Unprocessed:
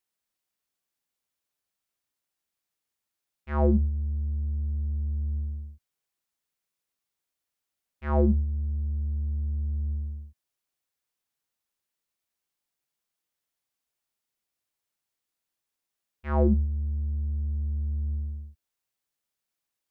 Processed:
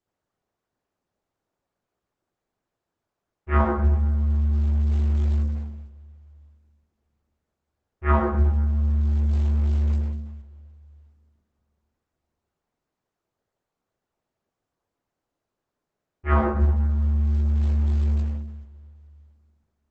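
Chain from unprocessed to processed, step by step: level-controlled noise filter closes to 850 Hz, open at -24.5 dBFS; compressor with a negative ratio -25 dBFS, ratio -0.5; two-slope reverb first 0.73 s, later 2.5 s, DRR -9.5 dB; trim +3.5 dB; Opus 10 kbps 48 kHz

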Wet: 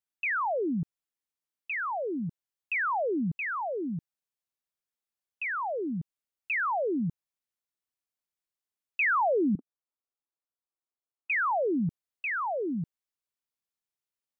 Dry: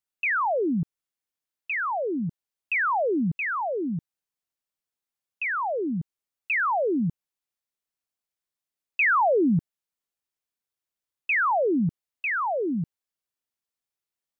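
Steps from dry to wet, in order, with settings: 9.55–11.30 s: elliptic band-pass 260–1300 Hz; trim -4.5 dB

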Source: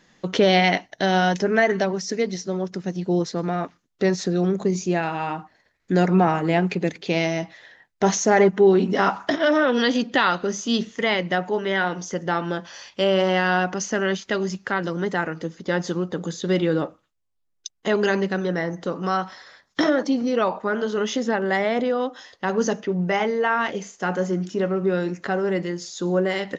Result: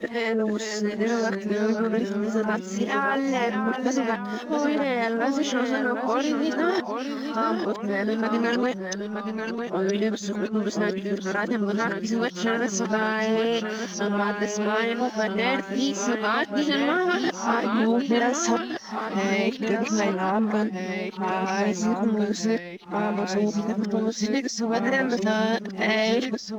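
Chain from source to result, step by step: reverse the whole clip; compression 3:1, threshold -25 dBFS, peak gain reduction 10.5 dB; formant-preserving pitch shift +3 st; hysteresis with a dead band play -52.5 dBFS; ever faster or slower copies 440 ms, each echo -1 st, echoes 2, each echo -6 dB; trim +2.5 dB

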